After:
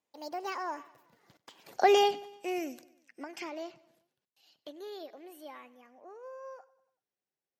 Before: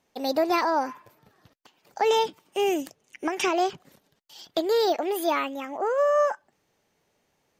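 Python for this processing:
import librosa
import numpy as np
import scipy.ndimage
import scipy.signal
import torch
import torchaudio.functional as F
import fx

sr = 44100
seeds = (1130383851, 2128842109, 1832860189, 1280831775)

y = fx.doppler_pass(x, sr, speed_mps=37, closest_m=4.4, pass_at_s=1.64)
y = fx.highpass(y, sr, hz=190.0, slope=6)
y = fx.notch(y, sr, hz=1300.0, q=16.0)
y = fx.echo_feedback(y, sr, ms=96, feedback_pct=55, wet_db=-21.0)
y = y * 10.0 ** (7.5 / 20.0)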